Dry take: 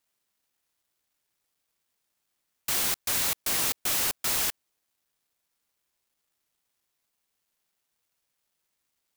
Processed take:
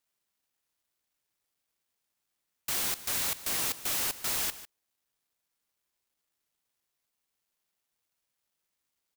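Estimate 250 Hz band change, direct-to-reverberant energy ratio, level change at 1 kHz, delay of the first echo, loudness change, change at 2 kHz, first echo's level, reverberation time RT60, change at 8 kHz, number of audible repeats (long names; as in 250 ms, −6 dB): −4.0 dB, no reverb audible, −4.0 dB, 150 ms, −4.0 dB, −4.0 dB, −15.5 dB, no reverb audible, −4.0 dB, 1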